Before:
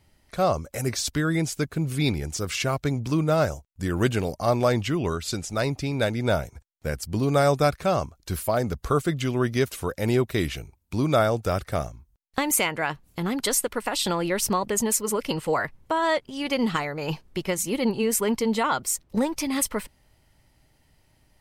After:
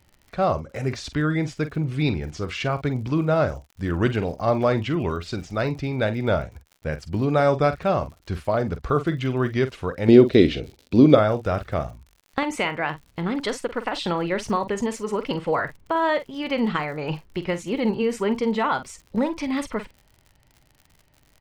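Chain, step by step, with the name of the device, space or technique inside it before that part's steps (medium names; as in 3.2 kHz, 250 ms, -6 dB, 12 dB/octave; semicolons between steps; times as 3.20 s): lo-fi chain (low-pass 3.2 kHz 12 dB/octave; wow and flutter; crackle 59 per s -40 dBFS); 10.08–11.15 s: graphic EQ 250/500/1000/4000 Hz +10/+10/-5/+9 dB; doubling 46 ms -12 dB; trim +1 dB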